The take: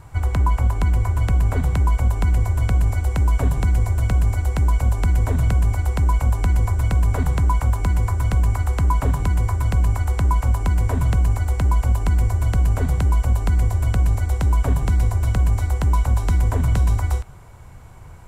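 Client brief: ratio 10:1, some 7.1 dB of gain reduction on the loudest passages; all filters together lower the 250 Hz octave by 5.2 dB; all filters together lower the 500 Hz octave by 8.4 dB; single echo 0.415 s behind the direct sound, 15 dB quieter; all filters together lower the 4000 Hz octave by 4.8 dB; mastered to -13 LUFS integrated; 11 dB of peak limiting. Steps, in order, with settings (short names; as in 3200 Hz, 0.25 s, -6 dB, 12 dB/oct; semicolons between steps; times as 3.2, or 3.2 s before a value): bell 250 Hz -6.5 dB; bell 500 Hz -9 dB; bell 4000 Hz -6.5 dB; compressor 10:1, threshold -21 dBFS; limiter -26 dBFS; echo 0.415 s -15 dB; gain +20.5 dB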